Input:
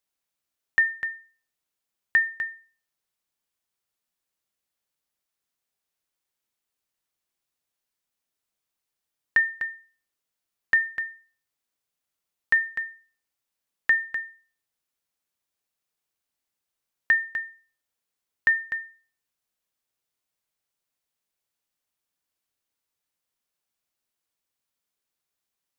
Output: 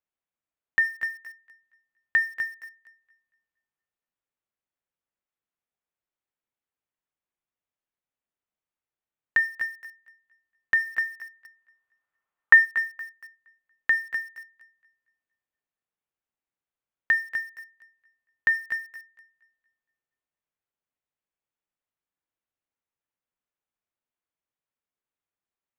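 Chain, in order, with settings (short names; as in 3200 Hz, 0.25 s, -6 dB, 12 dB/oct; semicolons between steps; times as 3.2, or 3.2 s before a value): Wiener smoothing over 9 samples; 10.86–12.64 bell 1200 Hz +6 dB -> +14.5 dB 1.6 oct; thinning echo 0.234 s, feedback 33%, high-pass 430 Hz, level -15.5 dB; in parallel at -9 dB: bit-crush 7-bit; on the sum: gain -4 dB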